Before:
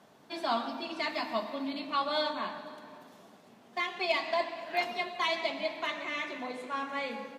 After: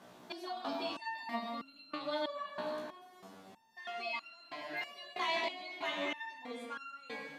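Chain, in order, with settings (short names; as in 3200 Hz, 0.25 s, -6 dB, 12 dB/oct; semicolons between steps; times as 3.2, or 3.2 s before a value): limiter -29 dBFS, peak gain reduction 11.5 dB; stepped resonator 3.1 Hz 61–1400 Hz; gain +11 dB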